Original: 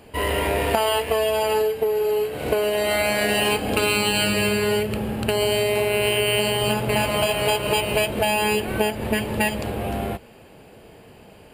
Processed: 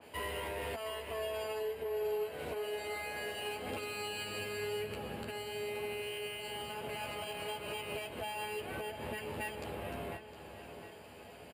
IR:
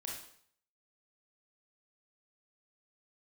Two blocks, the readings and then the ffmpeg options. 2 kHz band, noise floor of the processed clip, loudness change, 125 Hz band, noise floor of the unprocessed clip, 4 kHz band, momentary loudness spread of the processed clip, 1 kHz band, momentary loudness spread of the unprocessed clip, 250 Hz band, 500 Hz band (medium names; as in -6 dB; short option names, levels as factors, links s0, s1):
-17.0 dB, -52 dBFS, -18.0 dB, -20.0 dB, -47 dBFS, -18.5 dB, 7 LU, -17.0 dB, 5 LU, -21.5 dB, -17.5 dB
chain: -filter_complex "[0:a]highpass=f=130:p=1,lowshelf=f=330:g=-9,alimiter=limit=0.133:level=0:latency=1:release=236,acrossover=split=180[s0][s1];[s1]acompressor=threshold=0.00398:ratio=1.5[s2];[s0][s2]amix=inputs=2:normalize=0,asoftclip=type=tanh:threshold=0.0631,asplit=2[s3][s4];[s4]adelay=12,volume=0.708[s5];[s3][s5]amix=inputs=2:normalize=0,asplit=2[s6][s7];[s7]adelay=710,lowpass=f=4000:p=1,volume=0.299,asplit=2[s8][s9];[s9]adelay=710,lowpass=f=4000:p=1,volume=0.54,asplit=2[s10][s11];[s11]adelay=710,lowpass=f=4000:p=1,volume=0.54,asplit=2[s12][s13];[s13]adelay=710,lowpass=f=4000:p=1,volume=0.54,asplit=2[s14][s15];[s15]adelay=710,lowpass=f=4000:p=1,volume=0.54,asplit=2[s16][s17];[s17]adelay=710,lowpass=f=4000:p=1,volume=0.54[s18];[s8][s10][s12][s14][s16][s18]amix=inputs=6:normalize=0[s19];[s6][s19]amix=inputs=2:normalize=0,adynamicequalizer=threshold=0.00398:dfrequency=2800:dqfactor=0.7:tfrequency=2800:tqfactor=0.7:attack=5:release=100:ratio=0.375:range=1.5:mode=cutabove:tftype=highshelf,volume=0.562"